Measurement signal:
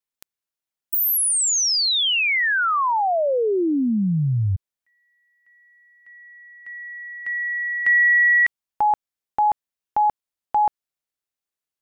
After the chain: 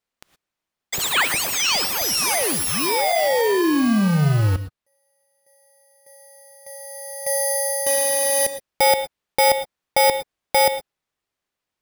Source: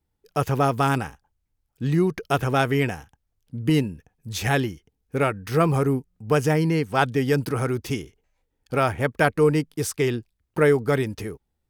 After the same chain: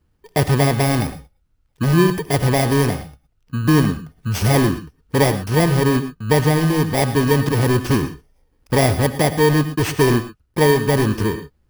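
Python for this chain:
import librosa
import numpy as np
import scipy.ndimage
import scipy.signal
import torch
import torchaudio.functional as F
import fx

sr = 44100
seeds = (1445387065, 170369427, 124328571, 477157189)

p1 = fx.bit_reversed(x, sr, seeds[0], block=32)
p2 = (np.mod(10.0 ** (21.0 / 20.0) * p1 + 1.0, 2.0) - 1.0) / 10.0 ** (21.0 / 20.0)
p3 = p1 + (p2 * librosa.db_to_amplitude(-5.5))
p4 = fx.lowpass(p3, sr, hz=2600.0, slope=6)
p5 = fx.rev_gated(p4, sr, seeds[1], gate_ms=140, shape='rising', drr_db=11.5)
p6 = fx.rider(p5, sr, range_db=3, speed_s=0.5)
y = p6 * librosa.db_to_amplitude(7.0)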